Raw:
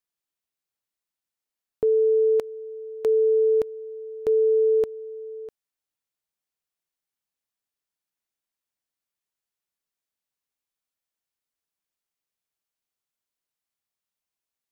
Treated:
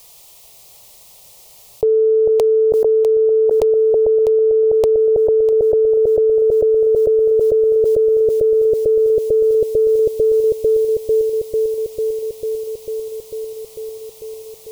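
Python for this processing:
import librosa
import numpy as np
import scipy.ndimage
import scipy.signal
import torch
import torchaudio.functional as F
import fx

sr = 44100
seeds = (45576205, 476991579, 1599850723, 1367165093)

y = fx.fixed_phaser(x, sr, hz=640.0, stages=4)
y = fx.echo_bbd(y, sr, ms=446, stages=2048, feedback_pct=77, wet_db=-3.5)
y = fx.env_flatten(y, sr, amount_pct=100)
y = F.gain(torch.from_numpy(y), 5.5).numpy()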